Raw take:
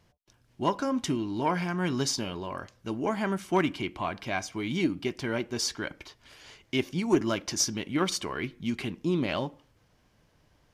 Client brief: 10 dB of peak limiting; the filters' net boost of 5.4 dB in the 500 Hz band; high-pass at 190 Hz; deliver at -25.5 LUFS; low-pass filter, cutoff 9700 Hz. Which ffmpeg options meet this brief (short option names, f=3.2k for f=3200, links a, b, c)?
-af "highpass=190,lowpass=9.7k,equalizer=f=500:t=o:g=8,volume=5dB,alimiter=limit=-13.5dB:level=0:latency=1"